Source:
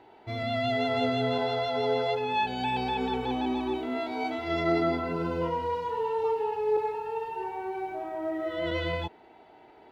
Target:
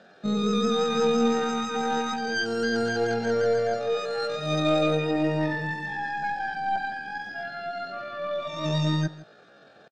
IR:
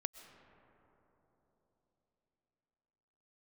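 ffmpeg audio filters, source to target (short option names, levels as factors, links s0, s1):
-filter_complex "[0:a]highpass=f=82:w=0.5412,highpass=f=82:w=1.3066,aemphasis=mode=reproduction:type=riaa,aeval=exprs='0.251*(cos(1*acos(clip(val(0)/0.251,-1,1)))-cos(1*PI/2))+0.0126*(cos(4*acos(clip(val(0)/0.251,-1,1)))-cos(4*PI/2))':c=same,asetrate=80880,aresample=44100,atempo=0.545254,equalizer=f=400:t=o:w=0.67:g=3,equalizer=f=1000:t=o:w=0.67:g=-10,equalizer=f=4000:t=o:w=0.67:g=6,asplit=2[s0][s1];[s1]aecho=0:1:160:0.112[s2];[s0][s2]amix=inputs=2:normalize=0"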